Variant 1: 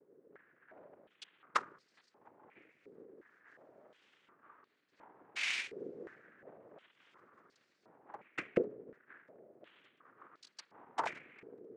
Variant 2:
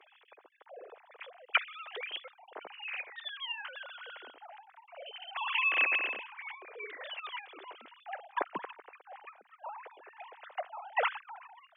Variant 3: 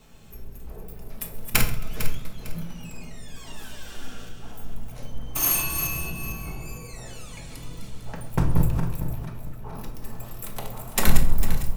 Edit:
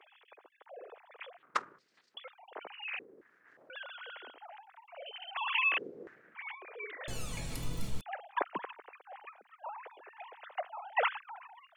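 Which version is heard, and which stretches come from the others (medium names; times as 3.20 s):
2
1.38–2.17 s: from 1
2.99–3.70 s: from 1
5.78–6.35 s: from 1
7.08–8.01 s: from 3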